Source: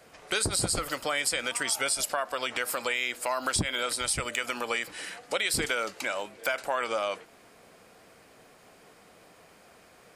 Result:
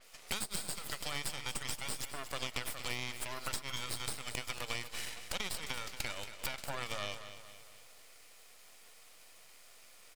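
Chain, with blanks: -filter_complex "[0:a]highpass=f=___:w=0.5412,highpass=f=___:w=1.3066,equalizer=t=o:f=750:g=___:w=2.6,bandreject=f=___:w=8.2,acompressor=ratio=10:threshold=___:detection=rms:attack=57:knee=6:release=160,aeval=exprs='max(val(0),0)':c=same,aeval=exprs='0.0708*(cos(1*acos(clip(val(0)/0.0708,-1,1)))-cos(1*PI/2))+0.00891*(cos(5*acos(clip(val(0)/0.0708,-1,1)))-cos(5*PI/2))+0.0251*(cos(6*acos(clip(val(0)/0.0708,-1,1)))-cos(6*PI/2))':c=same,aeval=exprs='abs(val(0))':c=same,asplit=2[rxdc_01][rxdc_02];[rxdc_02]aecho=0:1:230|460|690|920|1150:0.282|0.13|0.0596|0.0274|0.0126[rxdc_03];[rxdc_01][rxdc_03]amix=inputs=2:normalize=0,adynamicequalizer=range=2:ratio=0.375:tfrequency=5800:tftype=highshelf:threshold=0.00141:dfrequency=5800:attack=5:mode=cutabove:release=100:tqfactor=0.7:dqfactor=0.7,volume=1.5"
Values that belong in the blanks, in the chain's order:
520, 520, -14.5, 1600, 0.00501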